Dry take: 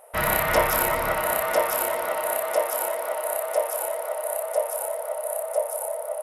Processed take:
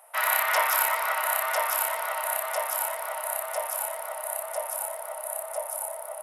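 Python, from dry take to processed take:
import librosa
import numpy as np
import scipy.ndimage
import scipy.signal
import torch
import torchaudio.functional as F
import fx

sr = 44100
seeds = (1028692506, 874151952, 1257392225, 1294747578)

y = scipy.signal.sosfilt(scipy.signal.butter(4, 780.0, 'highpass', fs=sr, output='sos'), x)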